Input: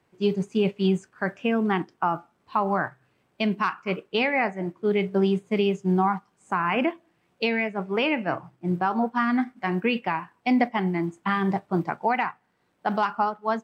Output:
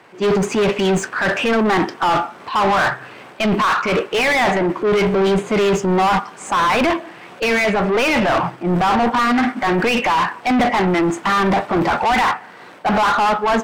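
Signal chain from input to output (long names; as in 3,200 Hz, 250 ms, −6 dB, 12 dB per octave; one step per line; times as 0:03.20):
transient designer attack −5 dB, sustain +9 dB
mid-hump overdrive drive 31 dB, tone 2,500 Hz, clips at −9.5 dBFS
level +1 dB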